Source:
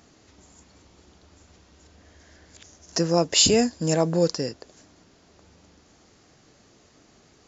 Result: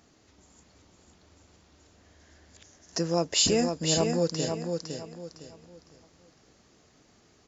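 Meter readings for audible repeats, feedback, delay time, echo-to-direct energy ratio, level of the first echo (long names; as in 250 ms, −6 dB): 3, 31%, 508 ms, −4.5 dB, −5.0 dB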